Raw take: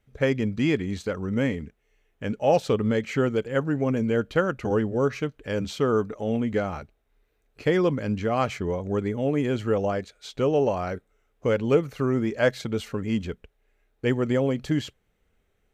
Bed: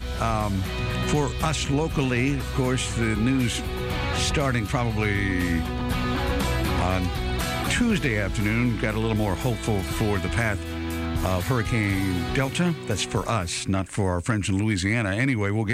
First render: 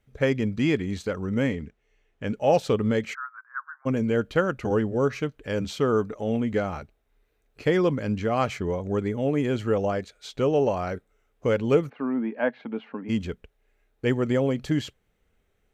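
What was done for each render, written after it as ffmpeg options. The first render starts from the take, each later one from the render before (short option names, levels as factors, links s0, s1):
-filter_complex "[0:a]asettb=1/sr,asplit=3[s0][s1][s2];[s0]atrim=end=1.534[s3];[s1]atrim=start=1.53:end=2.27,asetpts=PTS-STARTPTS,afade=t=in:d=0.004:c=qsin,afade=t=out:st=0.736:d=0.004:c=qsin,lowpass=7000[s4];[s2]atrim=start=2.266[s5];[s3][s4]acrossfade=d=0.004:c1=hsin:c2=qsin[s6];[s6][s5]acrossfade=d=0.004:c1=qsin:c2=hsin,asplit=3[s7][s8][s9];[s7]afade=t=out:st=3.13:d=0.02[s10];[s8]asuperpass=centerf=1300:order=8:qfactor=2.1,afade=t=in:st=3.13:d=0.02,afade=t=out:st=3.85:d=0.02[s11];[s9]afade=t=in:st=3.85:d=0.02[s12];[s10][s11][s12]amix=inputs=3:normalize=0,asplit=3[s13][s14][s15];[s13]afade=t=out:st=11.88:d=0.02[s16];[s14]highpass=f=240:w=0.5412,highpass=f=240:w=1.3066,equalizer=f=240:t=q:w=4:g=5,equalizer=f=380:t=q:w=4:g=-10,equalizer=f=550:t=q:w=4:g=-5,equalizer=f=880:t=q:w=4:g=4,equalizer=f=1300:t=q:w=4:g=-6,equalizer=f=2000:t=q:w=4:g=-6,lowpass=f=2300:w=0.5412,lowpass=f=2300:w=1.3066,afade=t=in:st=11.88:d=0.02,afade=t=out:st=13.08:d=0.02[s17];[s15]afade=t=in:st=13.08:d=0.02[s18];[s16][s17][s18]amix=inputs=3:normalize=0"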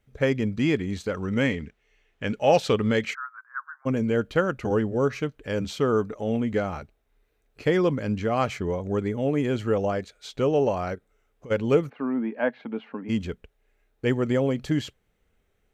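-filter_complex "[0:a]asettb=1/sr,asplit=3[s0][s1][s2];[s0]atrim=end=1.134[s3];[s1]atrim=start=1.13:end=3.11,asetpts=PTS-STARTPTS,afade=t=in:d=0.004:c=qsin,afade=t=out:st=1.976:d=0.004:c=qsin,equalizer=f=2900:w=0.45:g=6.5[s4];[s2]atrim=start=3.106[s5];[s3][s4]acrossfade=d=0.004:c1=hsin:c2=qsin[s6];[s6][s5]acrossfade=d=0.004:c1=qsin:c2=hsin,asplit=3[s7][s8][s9];[s7]afade=t=out:st=10.94:d=0.02[s10];[s8]acompressor=threshold=0.00891:ratio=5:attack=3.2:release=140:knee=1:detection=peak,afade=t=in:st=10.94:d=0.02,afade=t=out:st=11.5:d=0.02[s11];[s9]afade=t=in:st=11.5:d=0.02[s12];[s10][s11][s12]amix=inputs=3:normalize=0"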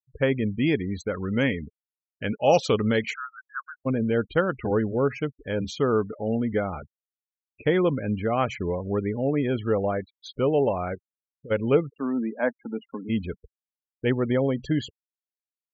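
-af "afftfilt=real='re*gte(hypot(re,im),0.0178)':imag='im*gte(hypot(re,im),0.0178)':win_size=1024:overlap=0.75,adynamicequalizer=threshold=0.00126:dfrequency=6700:dqfactor=2.1:tfrequency=6700:tqfactor=2.1:attack=5:release=100:ratio=0.375:range=3.5:mode=boostabove:tftype=bell"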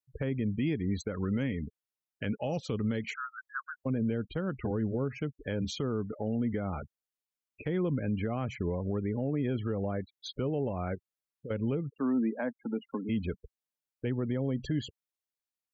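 -filter_complex "[0:a]acrossover=split=290[s0][s1];[s1]acompressor=threshold=0.0224:ratio=5[s2];[s0][s2]amix=inputs=2:normalize=0,alimiter=limit=0.0794:level=0:latency=1:release=122"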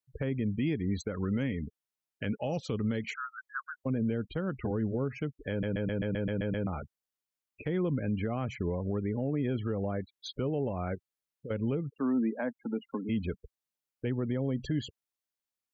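-filter_complex "[0:a]asplit=10[s0][s1][s2][s3][s4][s5][s6][s7][s8][s9];[s0]atrim=end=5.632[s10];[s1]atrim=start=5.498:end=5.632[s11];[s2]atrim=start=5.498:end=5.632[s12];[s3]atrim=start=5.498:end=5.632[s13];[s4]atrim=start=5.498:end=5.632[s14];[s5]atrim=start=5.498:end=5.632[s15];[s6]atrim=start=5.498:end=5.632[s16];[s7]atrim=start=5.498:end=5.632[s17];[s8]atrim=start=5.498:end=5.632[s18];[s9]atrim=start=6.668[s19];[s10][s11]acrossfade=d=0.004:c1=hsin:c2=hsin[s20];[s20][s12]acrossfade=d=0.004:c1=hsin:c2=hsin[s21];[s21][s13]acrossfade=d=0.004:c1=hsin:c2=hsin[s22];[s22][s14]acrossfade=d=0.004:c1=hsin:c2=hsin[s23];[s23][s15]acrossfade=d=0.004:c1=hsin:c2=hsin[s24];[s24][s16]acrossfade=d=0.004:c1=hsin:c2=hsin[s25];[s25][s17]acrossfade=d=0.004:c1=hsin:c2=hsin[s26];[s26][s18]acrossfade=d=0.004:c1=hsin:c2=hsin[s27];[s27][s19]acrossfade=d=0.004:c1=hsin:c2=hsin"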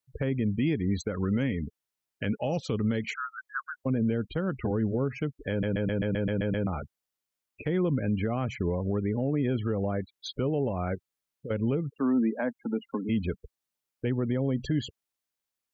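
-af "volume=1.5"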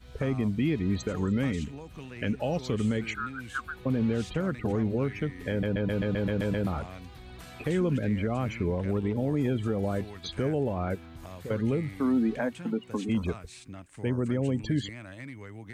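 -filter_complex "[1:a]volume=0.106[s0];[0:a][s0]amix=inputs=2:normalize=0"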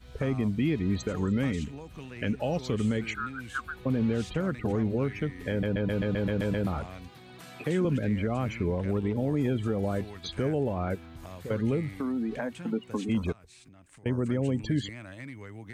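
-filter_complex "[0:a]asettb=1/sr,asplit=3[s0][s1][s2];[s0]atrim=end=7.084[s3];[s1]atrim=start=7.08:end=7.85,asetpts=PTS-STARTPTS,afade=t=in:d=0.004:c=qsin,afade=t=out:st=0.766:d=0.004:c=qsin,highpass=f=120:w=0.5412,highpass=f=120:w=1.3066[s4];[s2]atrim=start=7.846[s5];[s3][s4]acrossfade=d=0.004:c1=hsin:c2=qsin[s6];[s6][s5]acrossfade=d=0.004:c1=qsin:c2=hsin,asettb=1/sr,asplit=3[s7][s8][s9];[s7]atrim=end=11.854[s10];[s8]atrim=start=11.85:end=12.68,asetpts=PTS-STARTPTS,afade=t=in:d=0.004:c=qsin,afade=t=out:st=0.826:d=0.004:c=qsin,acompressor=threshold=0.0447:ratio=6:attack=3.2:release=140:knee=1:detection=peak[s11];[s9]atrim=start=12.676[s12];[s10][s11]acrossfade=d=0.004:c1=hsin:c2=qsin[s13];[s13][s12]acrossfade=d=0.004:c1=qsin:c2=hsin,asettb=1/sr,asplit=3[s14][s15][s16];[s14]atrim=end=13.324[s17];[s15]atrim=start=13.32:end=14.06,asetpts=PTS-STARTPTS,afade=t=in:d=0.004:c=qsin,afade=t=out:st=0.736:d=0.004:c=qsin,acompressor=threshold=0.00316:ratio=12:attack=3.2:release=140:knee=1:detection=peak[s18];[s16]atrim=start=14.056[s19];[s17][s18]acrossfade=d=0.004:c1=hsin:c2=qsin[s20];[s20][s19]acrossfade=d=0.004:c1=qsin:c2=hsin"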